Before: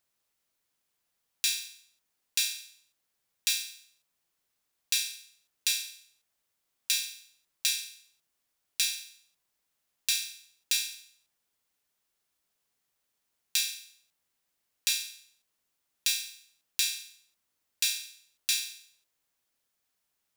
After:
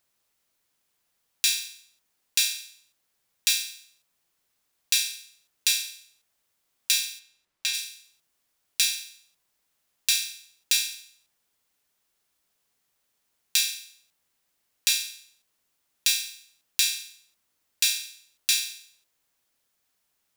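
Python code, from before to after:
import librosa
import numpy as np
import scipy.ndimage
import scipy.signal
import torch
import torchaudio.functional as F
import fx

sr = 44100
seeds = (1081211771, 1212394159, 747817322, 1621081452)

y = fx.high_shelf(x, sr, hz=5500.0, db=-11.5, at=(7.18, 7.73), fade=0.02)
y = F.gain(torch.from_numpy(y), 5.0).numpy()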